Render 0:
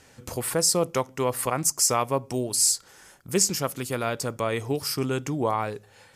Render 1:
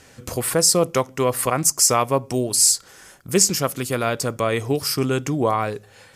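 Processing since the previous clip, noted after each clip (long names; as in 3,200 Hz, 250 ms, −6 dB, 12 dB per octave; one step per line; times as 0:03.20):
notch filter 880 Hz, Q 12
level +5.5 dB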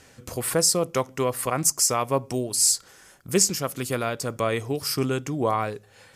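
amplitude tremolo 1.8 Hz, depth 30%
level −3 dB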